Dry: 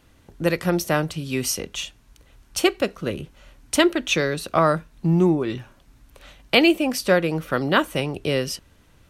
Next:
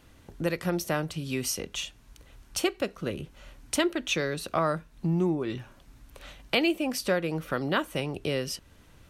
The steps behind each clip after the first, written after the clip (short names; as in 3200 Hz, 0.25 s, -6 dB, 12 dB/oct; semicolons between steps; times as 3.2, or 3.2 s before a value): compressor 1.5:1, threshold -37 dBFS, peak gain reduction 9.5 dB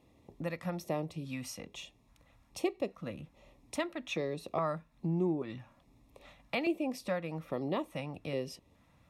high shelf 2700 Hz -11 dB; LFO notch square 1.2 Hz 390–1500 Hz; notch comb 1500 Hz; gain -3.5 dB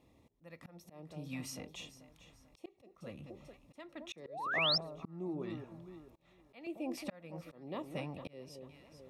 echo with dull and thin repeats by turns 0.221 s, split 860 Hz, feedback 61%, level -11 dB; painted sound rise, 4.25–4.78, 400–5600 Hz -28 dBFS; auto swell 0.482 s; gain -2 dB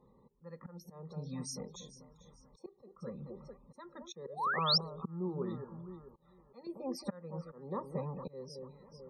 Butterworth band-stop 2900 Hz, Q 2.6; loudest bins only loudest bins 64; fixed phaser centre 450 Hz, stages 8; gain +6.5 dB